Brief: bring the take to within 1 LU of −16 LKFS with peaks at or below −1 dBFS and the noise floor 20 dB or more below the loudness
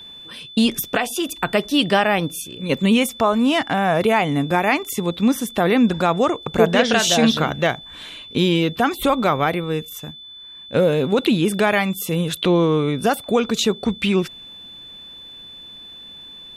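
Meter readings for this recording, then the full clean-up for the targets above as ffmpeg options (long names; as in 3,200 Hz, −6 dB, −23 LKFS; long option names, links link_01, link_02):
interfering tone 3,500 Hz; level of the tone −37 dBFS; integrated loudness −19.0 LKFS; sample peak −1.5 dBFS; target loudness −16.0 LKFS
→ -af "bandreject=frequency=3500:width=30"
-af "volume=3dB,alimiter=limit=-1dB:level=0:latency=1"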